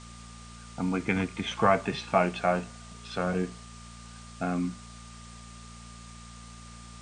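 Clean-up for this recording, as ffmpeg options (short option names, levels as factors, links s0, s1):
-af "bandreject=f=57.9:t=h:w=4,bandreject=f=115.8:t=h:w=4,bandreject=f=173.7:t=h:w=4,bandreject=f=231.6:t=h:w=4,bandreject=f=1200:w=30,afwtdn=0.0035"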